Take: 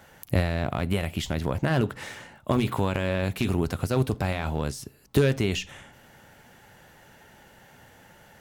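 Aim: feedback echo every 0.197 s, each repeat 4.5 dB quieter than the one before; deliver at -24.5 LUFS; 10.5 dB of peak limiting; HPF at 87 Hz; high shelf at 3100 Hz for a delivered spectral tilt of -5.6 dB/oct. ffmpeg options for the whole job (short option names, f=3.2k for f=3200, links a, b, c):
-af "highpass=87,highshelf=f=3.1k:g=-5,alimiter=limit=-19.5dB:level=0:latency=1,aecho=1:1:197|394|591|788|985|1182|1379|1576|1773:0.596|0.357|0.214|0.129|0.0772|0.0463|0.0278|0.0167|0.01,volume=7dB"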